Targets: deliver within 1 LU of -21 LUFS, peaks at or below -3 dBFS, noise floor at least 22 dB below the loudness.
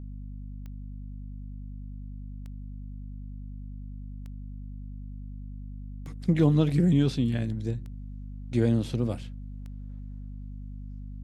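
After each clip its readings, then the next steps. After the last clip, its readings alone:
clicks 6; hum 50 Hz; harmonics up to 250 Hz; hum level -37 dBFS; loudness -26.0 LUFS; peak -10.5 dBFS; loudness target -21.0 LUFS
-> de-click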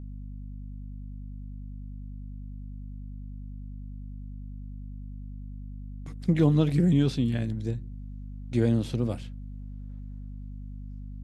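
clicks 0; hum 50 Hz; harmonics up to 250 Hz; hum level -37 dBFS
-> notches 50/100/150/200/250 Hz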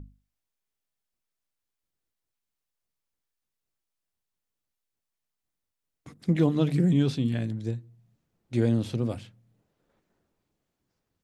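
hum none; loudness -26.5 LUFS; peak -11.0 dBFS; loudness target -21.0 LUFS
-> gain +5.5 dB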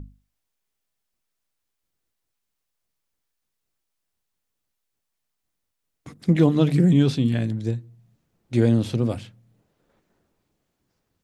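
loudness -21.5 LUFS; peak -5.5 dBFS; noise floor -80 dBFS

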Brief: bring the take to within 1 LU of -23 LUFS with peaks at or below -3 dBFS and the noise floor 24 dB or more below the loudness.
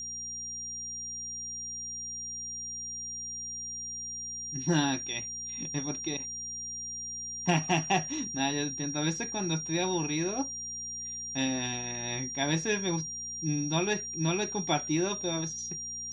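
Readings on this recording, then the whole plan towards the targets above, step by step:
hum 60 Hz; harmonics up to 240 Hz; hum level -55 dBFS; steady tone 5700 Hz; tone level -36 dBFS; loudness -32.0 LUFS; peak -13.0 dBFS; loudness target -23.0 LUFS
-> de-hum 60 Hz, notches 4; notch 5700 Hz, Q 30; gain +9 dB

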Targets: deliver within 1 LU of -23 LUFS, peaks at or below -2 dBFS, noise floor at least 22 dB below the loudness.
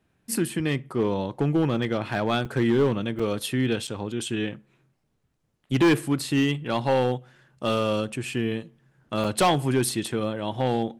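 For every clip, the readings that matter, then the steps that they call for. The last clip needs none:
clipped 1.4%; flat tops at -15.0 dBFS; dropouts 4; longest dropout 5.1 ms; loudness -25.5 LUFS; peak -15.0 dBFS; loudness target -23.0 LUFS
-> clip repair -15 dBFS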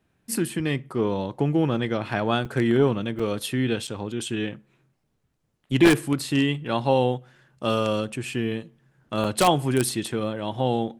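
clipped 0.0%; dropouts 4; longest dropout 5.1 ms
-> interpolate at 2.45/3.19/3.87/9.24, 5.1 ms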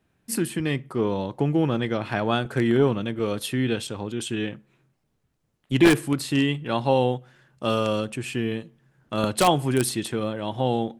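dropouts 0; loudness -24.5 LUFS; peak -6.0 dBFS; loudness target -23.0 LUFS
-> gain +1.5 dB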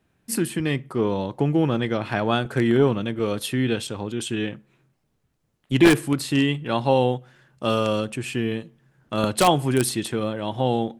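loudness -23.0 LUFS; peak -4.5 dBFS; noise floor -71 dBFS

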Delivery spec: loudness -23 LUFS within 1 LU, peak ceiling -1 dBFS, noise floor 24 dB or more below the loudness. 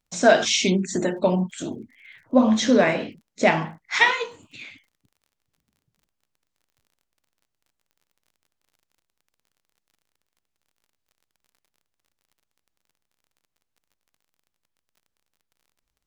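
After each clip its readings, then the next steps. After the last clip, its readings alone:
ticks 36/s; loudness -21.0 LUFS; peak -4.5 dBFS; loudness target -23.0 LUFS
-> de-click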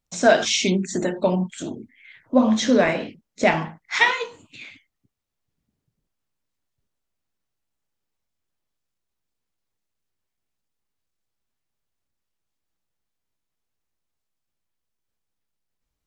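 ticks 0.062/s; loudness -21.0 LUFS; peak -4.5 dBFS; loudness target -23.0 LUFS
-> gain -2 dB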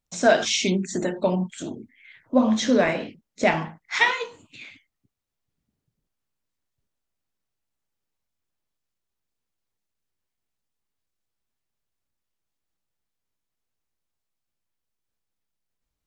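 loudness -23.0 LUFS; peak -6.5 dBFS; noise floor -83 dBFS

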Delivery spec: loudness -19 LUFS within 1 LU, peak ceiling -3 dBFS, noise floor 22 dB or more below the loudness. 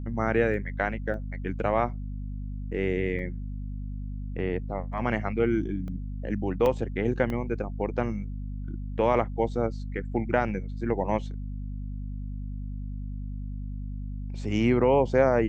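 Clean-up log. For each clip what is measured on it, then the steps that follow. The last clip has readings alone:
dropouts 6; longest dropout 1.1 ms; hum 50 Hz; harmonics up to 250 Hz; hum level -32 dBFS; loudness -29.5 LUFS; peak -8.5 dBFS; loudness target -19.0 LUFS
-> interpolate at 0.54/1.14/3.19/5.88/6.66/7.3, 1.1 ms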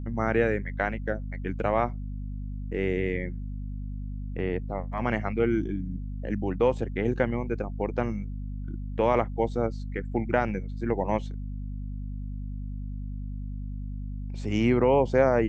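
dropouts 0; hum 50 Hz; harmonics up to 250 Hz; hum level -32 dBFS
-> de-hum 50 Hz, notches 5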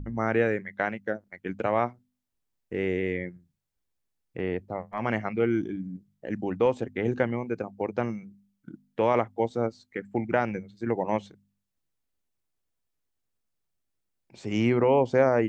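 hum none; loudness -28.5 LUFS; peak -8.5 dBFS; loudness target -19.0 LUFS
-> gain +9.5 dB; limiter -3 dBFS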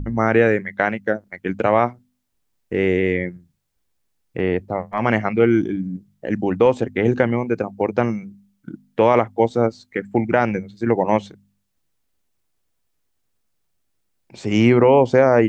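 loudness -19.5 LUFS; peak -3.0 dBFS; noise floor -70 dBFS

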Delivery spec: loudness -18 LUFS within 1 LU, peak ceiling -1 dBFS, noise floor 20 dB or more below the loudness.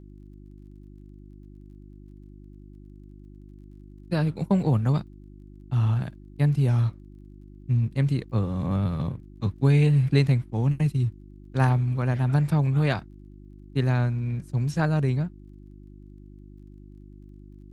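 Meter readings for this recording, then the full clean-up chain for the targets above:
ticks 20/s; hum 50 Hz; harmonics up to 350 Hz; hum level -46 dBFS; loudness -25.0 LUFS; peak -6.5 dBFS; loudness target -18.0 LUFS
-> de-click; de-hum 50 Hz, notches 7; gain +7 dB; limiter -1 dBFS

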